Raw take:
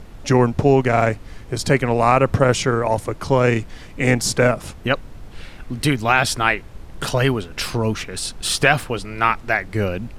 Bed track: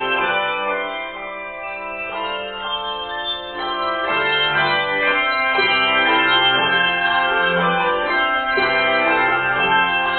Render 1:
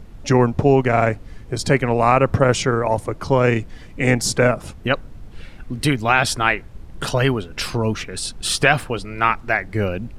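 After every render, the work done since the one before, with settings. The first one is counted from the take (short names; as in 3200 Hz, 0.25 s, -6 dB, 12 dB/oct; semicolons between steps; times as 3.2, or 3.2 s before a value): denoiser 6 dB, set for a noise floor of -39 dBFS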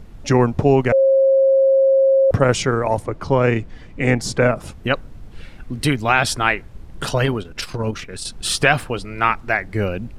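0.92–2.31 bleep 538 Hz -10.5 dBFS; 3.02–4.56 LPF 3700 Hz 6 dB/oct; 7.25–8.32 core saturation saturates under 330 Hz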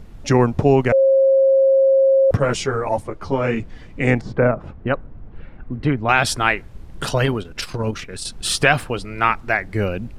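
2.37–3.6 ensemble effect; 4.21–6.09 LPF 1500 Hz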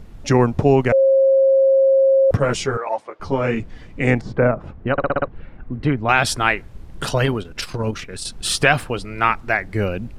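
2.77–3.2 BPF 580–4500 Hz; 4.92 stutter in place 0.06 s, 6 plays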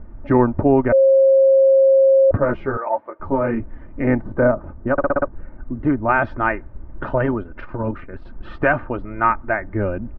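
LPF 1600 Hz 24 dB/oct; comb 3.3 ms, depth 50%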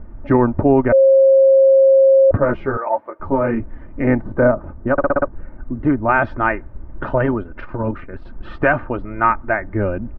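gain +2 dB; limiter -3 dBFS, peak gain reduction 3 dB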